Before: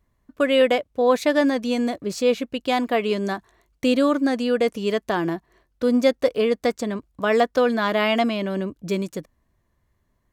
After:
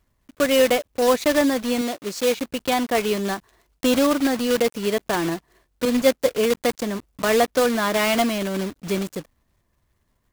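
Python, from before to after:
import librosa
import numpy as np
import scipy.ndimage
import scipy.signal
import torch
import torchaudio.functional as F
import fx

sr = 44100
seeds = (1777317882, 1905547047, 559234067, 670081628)

y = fx.block_float(x, sr, bits=3)
y = fx.low_shelf(y, sr, hz=170.0, db=-11.5, at=(1.81, 2.37))
y = fx.band_widen(y, sr, depth_pct=100, at=(5.85, 6.26))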